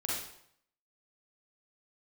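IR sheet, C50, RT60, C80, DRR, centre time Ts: -1.0 dB, 0.70 s, 4.0 dB, -6.0 dB, 64 ms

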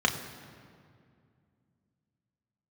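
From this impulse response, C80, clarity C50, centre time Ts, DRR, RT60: 10.0 dB, 9.5 dB, 27 ms, 2.0 dB, 2.3 s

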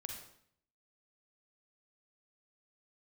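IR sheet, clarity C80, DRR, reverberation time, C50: 7.0 dB, 2.0 dB, 0.65 s, 3.0 dB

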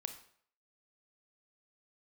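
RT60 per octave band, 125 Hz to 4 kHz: 0.50, 0.50, 0.60, 0.60, 0.55, 0.50 s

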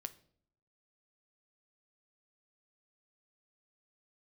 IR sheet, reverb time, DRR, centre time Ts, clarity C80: 0.60 s, 10.0 dB, 4 ms, 22.0 dB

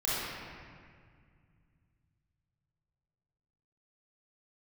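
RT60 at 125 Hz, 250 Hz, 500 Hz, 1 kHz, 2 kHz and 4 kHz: 4.1, 3.1, 2.1, 1.9, 2.0, 1.4 s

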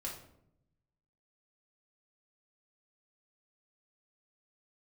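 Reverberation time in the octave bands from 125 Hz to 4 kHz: 1.4, 1.1, 0.85, 0.65, 0.50, 0.45 s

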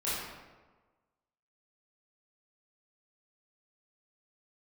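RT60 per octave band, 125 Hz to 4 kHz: 1.3, 1.3, 1.3, 1.3, 1.0, 0.80 s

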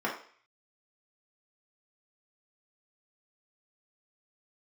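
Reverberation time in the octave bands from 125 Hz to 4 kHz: 0.35, 0.40, 0.45, 0.50, 0.55, 0.55 s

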